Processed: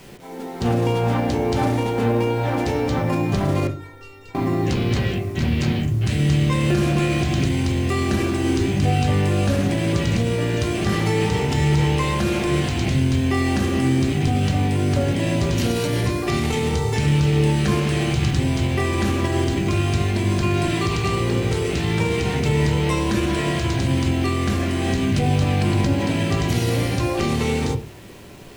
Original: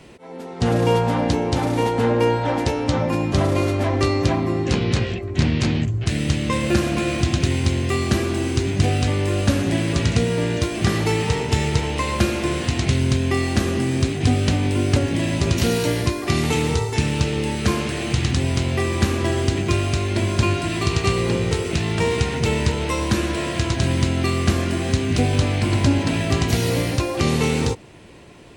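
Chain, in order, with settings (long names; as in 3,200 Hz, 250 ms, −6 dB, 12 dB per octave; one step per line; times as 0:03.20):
brickwall limiter −14.5 dBFS, peak gain reduction 9.5 dB
bit-depth reduction 8 bits, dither none
0:03.67–0:04.35: tuned comb filter 460 Hz, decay 0.22 s, harmonics all, mix 100%
convolution reverb RT60 0.35 s, pre-delay 5 ms, DRR 3 dB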